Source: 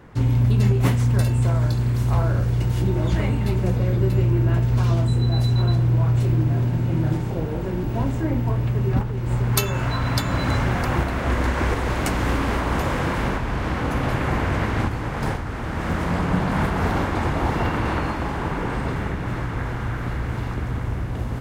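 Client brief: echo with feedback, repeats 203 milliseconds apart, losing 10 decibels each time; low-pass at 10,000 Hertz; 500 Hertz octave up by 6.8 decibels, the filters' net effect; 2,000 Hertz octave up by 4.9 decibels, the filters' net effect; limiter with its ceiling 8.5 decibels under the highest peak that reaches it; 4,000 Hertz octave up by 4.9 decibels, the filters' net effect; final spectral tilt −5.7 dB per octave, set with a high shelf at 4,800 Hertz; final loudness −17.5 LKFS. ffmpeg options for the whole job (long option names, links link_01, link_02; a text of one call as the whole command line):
ffmpeg -i in.wav -af "lowpass=10000,equalizer=frequency=500:width_type=o:gain=8.5,equalizer=frequency=2000:width_type=o:gain=4.5,equalizer=frequency=4000:width_type=o:gain=3,highshelf=frequency=4800:gain=3.5,alimiter=limit=-12dB:level=0:latency=1,aecho=1:1:203|406|609|812:0.316|0.101|0.0324|0.0104,volume=4.5dB" out.wav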